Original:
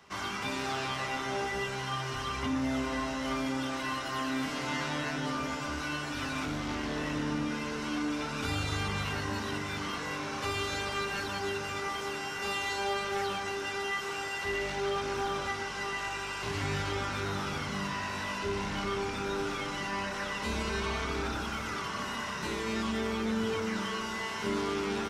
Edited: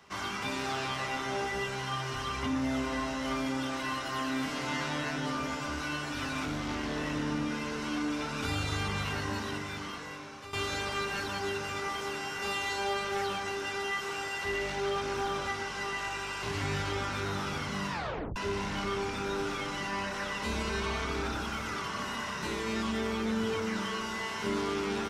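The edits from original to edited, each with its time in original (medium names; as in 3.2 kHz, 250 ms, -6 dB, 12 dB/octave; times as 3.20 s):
9.32–10.53 s: fade out, to -14 dB
17.91 s: tape stop 0.45 s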